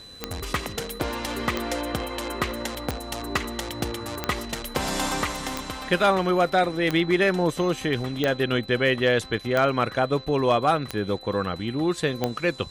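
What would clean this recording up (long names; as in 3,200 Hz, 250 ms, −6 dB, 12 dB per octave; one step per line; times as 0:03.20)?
clipped peaks rebuilt −11.5 dBFS
click removal
notch filter 4,000 Hz, Q 30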